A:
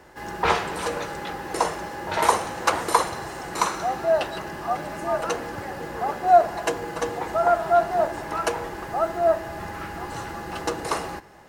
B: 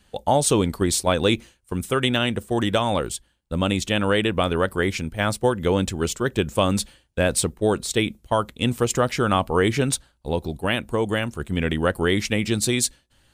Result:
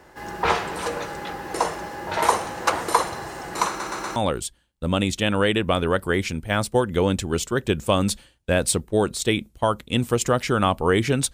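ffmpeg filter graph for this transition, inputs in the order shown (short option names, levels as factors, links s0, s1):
-filter_complex "[0:a]apad=whole_dur=11.33,atrim=end=11.33,asplit=4[s0][s1][s2][s3];[s0]atrim=end=3.802[s4];[s1]atrim=start=3.678:end=3.802[s5];[s2]atrim=start=3.678:end=3.802[s6];[s3]atrim=start=3.678:end=3.802[s7];[1:a]atrim=start=2.848:end=10.02[s8];[s4][s5]acrossfade=d=0.004:c1=hsin:c2=hsin[s9];[s9][s6]acrossfade=d=0.004:c1=hsin:c2=hsin[s10];[s10][s7]acrossfade=d=0.004:c1=hsin:c2=hsin[s11];[s11][s8]acrossfade=d=0.004:c1=hsin:c2=hsin"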